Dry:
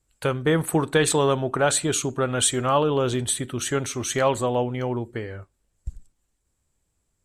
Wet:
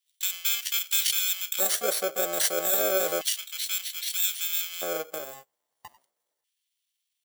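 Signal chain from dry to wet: bit-reversed sample order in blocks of 64 samples; LFO high-pass square 0.31 Hz 410–2100 Hz; pitch shift +5.5 st; trim -2 dB

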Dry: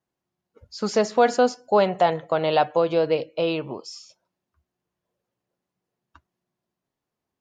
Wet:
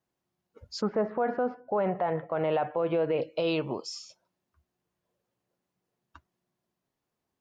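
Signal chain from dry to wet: 0.80–3.21 s: low-pass 1.6 kHz -> 2.7 kHz 24 dB/octave; peak limiter -19 dBFS, peak gain reduction 12 dB

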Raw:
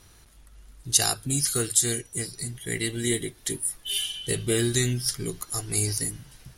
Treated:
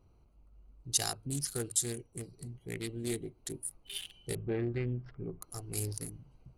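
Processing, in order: local Wiener filter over 25 samples; 4.35–5.42 s: low-pass 2.1 kHz 24 dB/octave; loudspeaker Doppler distortion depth 0.23 ms; trim -8 dB

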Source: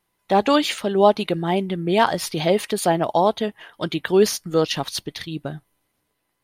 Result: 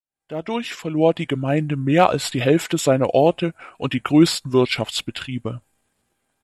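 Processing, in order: fade-in on the opening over 1.71 s; pitch shift -4 st; trim +2.5 dB

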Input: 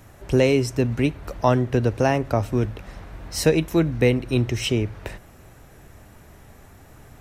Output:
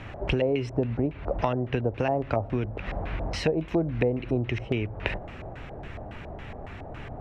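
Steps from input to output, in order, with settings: compression 6:1, threshold -32 dBFS, peak gain reduction 18.5 dB; LFO low-pass square 3.6 Hz 710–2700 Hz; trim +7 dB

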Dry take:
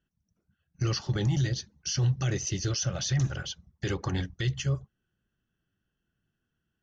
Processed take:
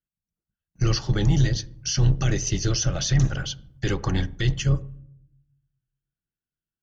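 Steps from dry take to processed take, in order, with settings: octave divider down 2 oct, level -3 dB; gate with hold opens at -55 dBFS; on a send: peaking EQ 6.5 kHz -13.5 dB 1.4 oct + reverberation RT60 0.70 s, pre-delay 6 ms, DRR 16.5 dB; on the sum: trim +5 dB

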